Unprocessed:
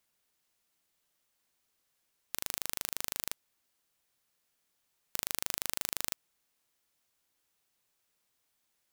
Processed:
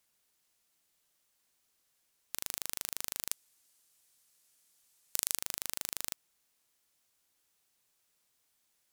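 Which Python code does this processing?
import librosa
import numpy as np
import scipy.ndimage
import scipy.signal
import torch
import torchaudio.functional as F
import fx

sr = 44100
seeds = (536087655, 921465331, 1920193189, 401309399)

y = 10.0 ** (-9.0 / 20.0) * np.tanh(x / 10.0 ** (-9.0 / 20.0))
y = fx.peak_eq(y, sr, hz=8900.0, db=fx.steps((0.0, 4.0), (3.31, 12.0), (5.37, 4.0)), octaves=2.1)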